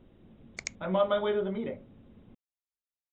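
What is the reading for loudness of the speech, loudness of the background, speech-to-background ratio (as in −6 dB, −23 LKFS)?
−30.5 LKFS, −42.0 LKFS, 11.5 dB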